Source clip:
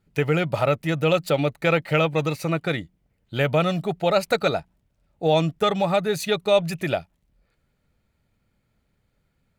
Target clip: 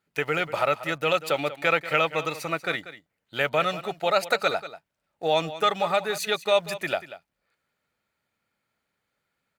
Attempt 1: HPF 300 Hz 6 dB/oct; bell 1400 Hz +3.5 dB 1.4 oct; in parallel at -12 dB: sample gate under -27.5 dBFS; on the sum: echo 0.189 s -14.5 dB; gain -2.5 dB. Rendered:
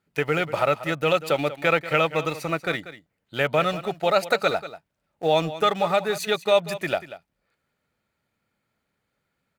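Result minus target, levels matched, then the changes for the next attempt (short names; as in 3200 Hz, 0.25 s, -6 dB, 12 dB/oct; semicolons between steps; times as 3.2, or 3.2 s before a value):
sample gate: distortion +9 dB; 250 Hz band +3.0 dB
change: HPF 690 Hz 6 dB/oct; change: sample gate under -37.5 dBFS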